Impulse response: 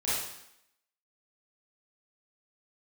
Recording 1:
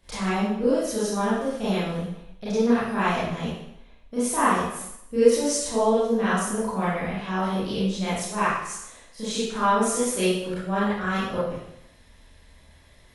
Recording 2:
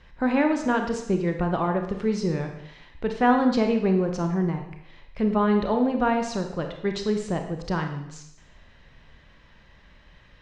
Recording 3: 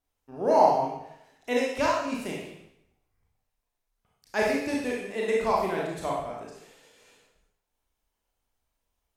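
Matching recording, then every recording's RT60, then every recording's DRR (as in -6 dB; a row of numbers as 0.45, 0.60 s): 1; 0.75, 0.75, 0.75 s; -11.5, 4.0, -4.0 dB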